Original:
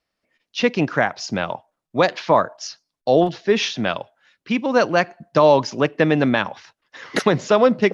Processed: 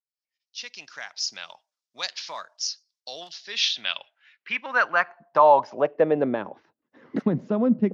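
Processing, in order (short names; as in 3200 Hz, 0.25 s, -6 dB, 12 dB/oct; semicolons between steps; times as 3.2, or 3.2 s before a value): opening faded in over 1.37 s; dynamic EQ 350 Hz, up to -6 dB, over -28 dBFS, Q 0.85; band-pass sweep 5300 Hz -> 240 Hz, 3.35–6.93; gain +5 dB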